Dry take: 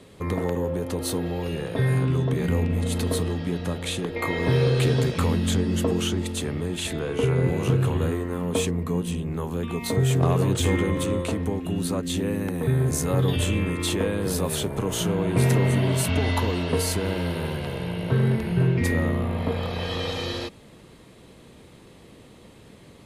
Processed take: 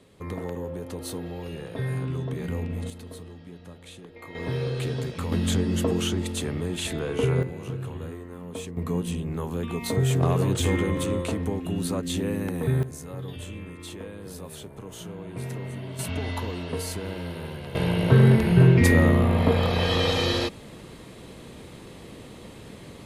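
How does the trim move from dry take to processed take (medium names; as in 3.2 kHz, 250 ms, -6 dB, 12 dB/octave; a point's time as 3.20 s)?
-7 dB
from 2.90 s -16.5 dB
from 4.35 s -8 dB
from 5.32 s -1 dB
from 7.43 s -11.5 dB
from 8.77 s -1.5 dB
from 12.83 s -14 dB
from 15.99 s -7 dB
from 17.75 s +5.5 dB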